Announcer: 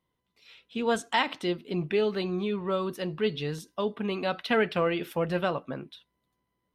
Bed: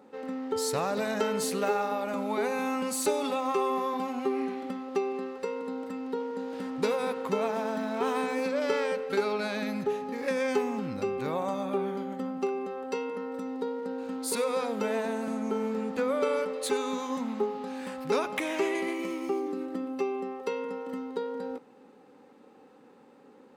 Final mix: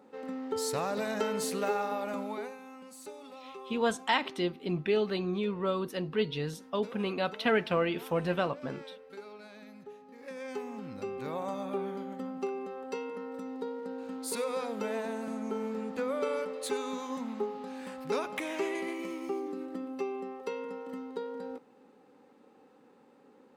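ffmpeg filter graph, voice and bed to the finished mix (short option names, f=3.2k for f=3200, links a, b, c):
-filter_complex "[0:a]adelay=2950,volume=-2dB[a];[1:a]volume=11dB,afade=t=out:st=2.12:d=0.46:silence=0.16788,afade=t=in:st=10.07:d=1.42:silence=0.199526[b];[a][b]amix=inputs=2:normalize=0"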